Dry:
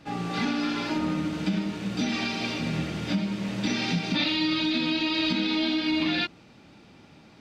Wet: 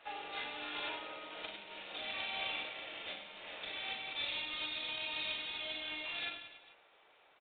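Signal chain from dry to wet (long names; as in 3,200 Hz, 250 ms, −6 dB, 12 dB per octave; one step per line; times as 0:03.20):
source passing by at 0:01.86, 6 m/s, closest 2.5 metres
dynamic equaliser 1,400 Hz, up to −6 dB, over −56 dBFS, Q 1.1
on a send at −23.5 dB: convolution reverb RT60 1.1 s, pre-delay 17 ms
on the sum: downward compressor 6 to 1, threshold −43 dBFS, peak gain reduction 20.5 dB
high-shelf EQ 2,500 Hz +7 dB
reverse bouncing-ball delay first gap 40 ms, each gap 1.4×, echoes 5
background noise brown −59 dBFS
high-pass filter 530 Hz 24 dB per octave
level +7.5 dB
IMA ADPCM 32 kbit/s 8,000 Hz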